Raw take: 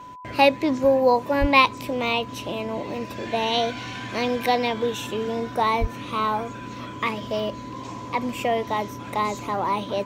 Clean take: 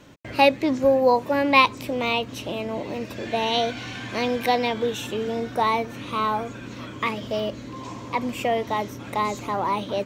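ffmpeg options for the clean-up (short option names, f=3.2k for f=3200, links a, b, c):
-filter_complex "[0:a]bandreject=f=1k:w=30,asplit=3[a][b][c];[a]afade=t=out:st=1.4:d=0.02[d];[b]highpass=f=140:w=0.5412,highpass=f=140:w=1.3066,afade=t=in:st=1.4:d=0.02,afade=t=out:st=1.52:d=0.02[e];[c]afade=t=in:st=1.52:d=0.02[f];[d][e][f]amix=inputs=3:normalize=0,asplit=3[g][h][i];[g]afade=t=out:st=5.8:d=0.02[j];[h]highpass=f=140:w=0.5412,highpass=f=140:w=1.3066,afade=t=in:st=5.8:d=0.02,afade=t=out:st=5.92:d=0.02[k];[i]afade=t=in:st=5.92:d=0.02[l];[j][k][l]amix=inputs=3:normalize=0"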